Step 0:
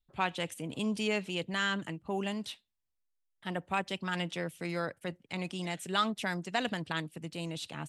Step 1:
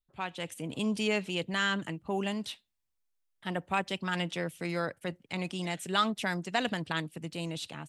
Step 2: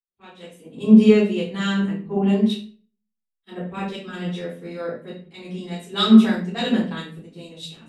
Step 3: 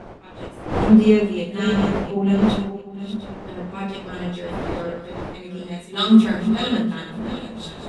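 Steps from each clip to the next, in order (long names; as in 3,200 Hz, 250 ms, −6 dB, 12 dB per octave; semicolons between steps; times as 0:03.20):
automatic gain control gain up to 8 dB; level −6 dB
hollow resonant body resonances 230/400/3,800 Hz, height 16 dB, ringing for 65 ms; convolution reverb RT60 0.60 s, pre-delay 3 ms, DRR −13 dB; multiband upward and downward expander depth 100%; level −12.5 dB
feedback delay that plays each chunk backwards 352 ms, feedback 50%, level −9 dB; wind on the microphone 610 Hz −30 dBFS; level −1 dB; AAC 48 kbit/s 24,000 Hz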